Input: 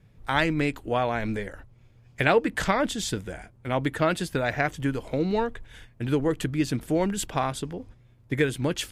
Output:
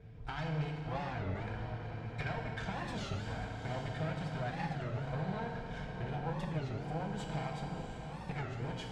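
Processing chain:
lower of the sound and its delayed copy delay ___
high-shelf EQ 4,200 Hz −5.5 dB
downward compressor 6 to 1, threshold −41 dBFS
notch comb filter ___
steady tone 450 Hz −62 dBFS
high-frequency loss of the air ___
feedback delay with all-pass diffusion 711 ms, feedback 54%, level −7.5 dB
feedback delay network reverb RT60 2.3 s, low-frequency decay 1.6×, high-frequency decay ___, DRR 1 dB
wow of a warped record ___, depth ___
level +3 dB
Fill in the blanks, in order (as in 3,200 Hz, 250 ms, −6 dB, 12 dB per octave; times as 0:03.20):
1.3 ms, 290 Hz, 100 metres, 0.9×, 33 1/3 rpm, 250 cents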